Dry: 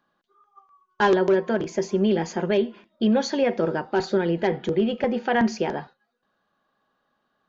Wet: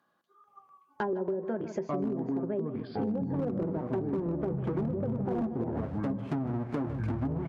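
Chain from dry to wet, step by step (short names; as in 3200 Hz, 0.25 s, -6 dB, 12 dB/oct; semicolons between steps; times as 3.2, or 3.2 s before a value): 3.34–5.57 half-waves squared off; echoes that change speed 0.476 s, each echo -6 st, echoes 3; HPF 70 Hz 12 dB/oct; treble ducked by the level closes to 630 Hz, closed at -15 dBFS; bell 3500 Hz -10 dB 2.6 oct; feedback echo 0.153 s, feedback 30%, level -14.5 dB; hard clip -12.5 dBFS, distortion -22 dB; compressor, threshold -25 dBFS, peak gain reduction 10 dB; mismatched tape noise reduction encoder only; gain -3.5 dB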